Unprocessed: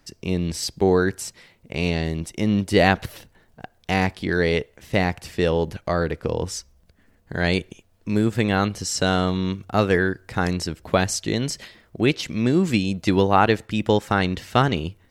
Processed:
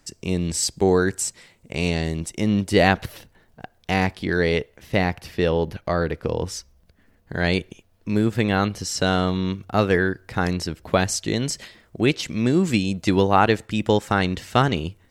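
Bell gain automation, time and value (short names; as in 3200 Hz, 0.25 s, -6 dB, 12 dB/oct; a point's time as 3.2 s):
bell 7800 Hz 0.62 oct
1.98 s +9.5 dB
3.04 s -1.5 dB
4.52 s -1.5 dB
5.54 s -10.5 dB
6.28 s -3 dB
10.69 s -3 dB
11.41 s +3.5 dB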